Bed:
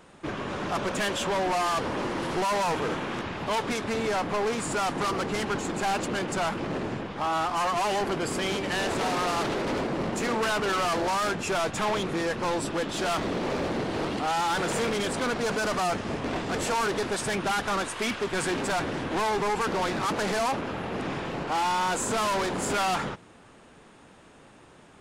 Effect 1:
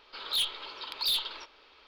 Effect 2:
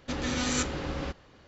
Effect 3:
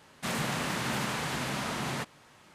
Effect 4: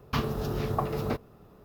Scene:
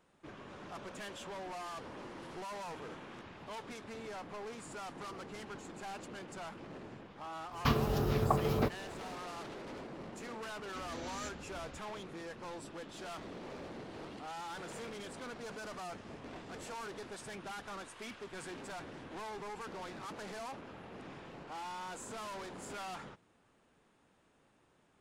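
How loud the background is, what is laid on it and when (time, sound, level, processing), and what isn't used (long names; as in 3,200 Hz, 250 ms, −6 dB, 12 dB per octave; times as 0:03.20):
bed −17.5 dB
0:07.52: mix in 4 −1 dB
0:10.66: mix in 2 −17 dB
not used: 1, 3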